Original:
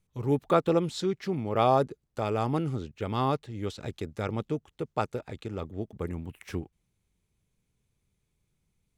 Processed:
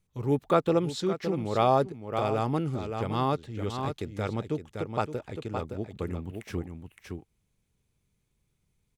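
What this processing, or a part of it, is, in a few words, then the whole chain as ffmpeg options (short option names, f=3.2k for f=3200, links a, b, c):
ducked delay: -filter_complex "[0:a]asplit=3[a][b][c];[b]adelay=566,volume=-5dB[d];[c]apad=whole_len=420706[e];[d][e]sidechaincompress=threshold=-32dB:ratio=8:attack=46:release=373[f];[a][f]amix=inputs=2:normalize=0"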